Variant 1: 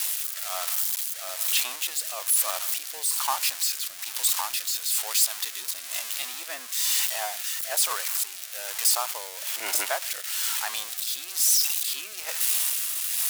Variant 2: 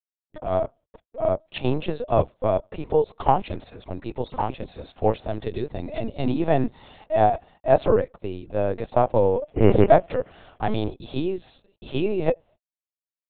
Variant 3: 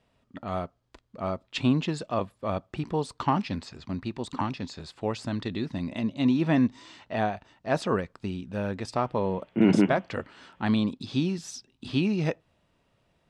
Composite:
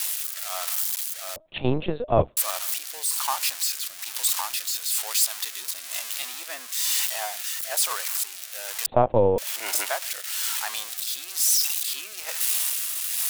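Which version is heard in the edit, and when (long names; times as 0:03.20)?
1
0:01.36–0:02.37: punch in from 2
0:08.86–0:09.38: punch in from 2
not used: 3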